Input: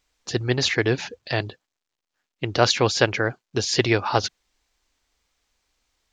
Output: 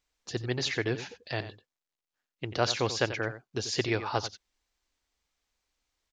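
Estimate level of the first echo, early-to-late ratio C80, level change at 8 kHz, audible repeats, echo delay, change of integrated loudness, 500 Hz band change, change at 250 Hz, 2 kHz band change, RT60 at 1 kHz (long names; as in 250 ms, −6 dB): −12.5 dB, no reverb audible, −9.0 dB, 1, 89 ms, −8.5 dB, −9.0 dB, −8.5 dB, −8.5 dB, no reverb audible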